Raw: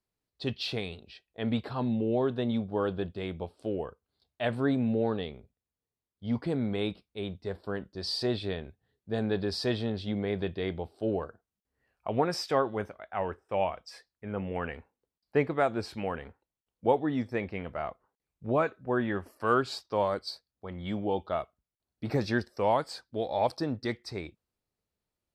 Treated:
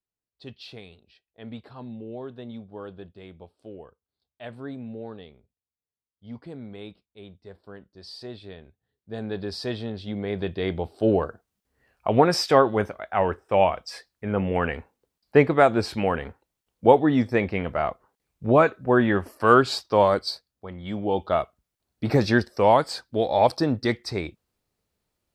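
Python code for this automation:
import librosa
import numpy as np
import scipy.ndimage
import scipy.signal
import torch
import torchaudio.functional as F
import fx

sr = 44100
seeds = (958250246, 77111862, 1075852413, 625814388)

y = fx.gain(x, sr, db=fx.line((8.41, -9.0), (9.46, -0.5), (10.02, -0.5), (11.05, 9.5), (20.22, 9.5), (20.82, 0.5), (21.31, 8.5)))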